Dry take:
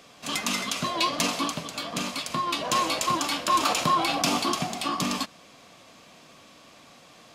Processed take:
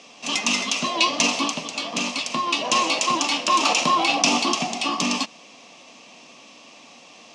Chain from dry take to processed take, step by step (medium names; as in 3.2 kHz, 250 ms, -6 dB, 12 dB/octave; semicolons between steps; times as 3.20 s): cabinet simulation 220–8200 Hz, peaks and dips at 240 Hz +5 dB, 860 Hz +4 dB, 1.5 kHz -9 dB, 2.7 kHz +8 dB, 5.8 kHz +7 dB; trim +3 dB